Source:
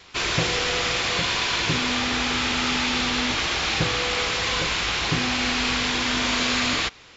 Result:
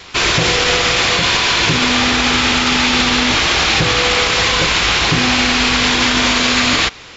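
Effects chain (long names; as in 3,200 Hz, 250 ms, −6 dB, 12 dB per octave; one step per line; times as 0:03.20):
boost into a limiter +15.5 dB
level −3.5 dB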